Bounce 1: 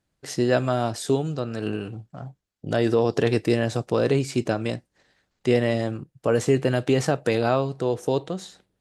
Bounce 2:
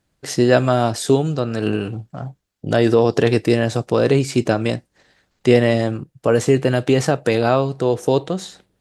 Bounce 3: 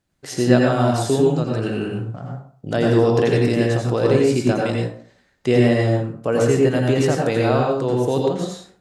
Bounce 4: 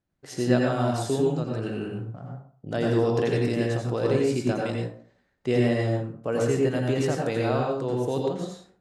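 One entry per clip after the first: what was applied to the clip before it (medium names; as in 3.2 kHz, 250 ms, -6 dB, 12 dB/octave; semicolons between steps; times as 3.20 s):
gain riding within 3 dB 2 s; trim +5.5 dB
plate-style reverb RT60 0.5 s, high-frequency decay 0.6×, pre-delay 75 ms, DRR -1 dB; trim -5 dB
tape noise reduction on one side only decoder only; trim -7 dB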